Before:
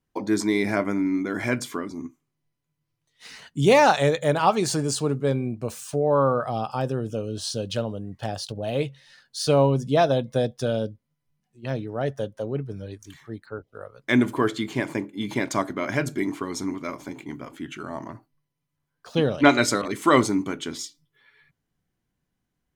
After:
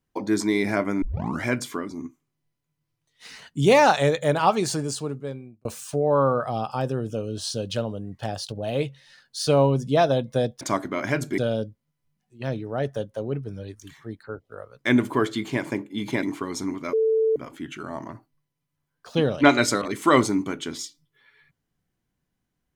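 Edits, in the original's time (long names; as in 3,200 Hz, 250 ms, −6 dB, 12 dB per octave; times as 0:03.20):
0:01.02: tape start 0.42 s
0:04.54–0:05.65: fade out
0:15.46–0:16.23: move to 0:10.61
0:16.93–0:17.36: beep over 443 Hz −17.5 dBFS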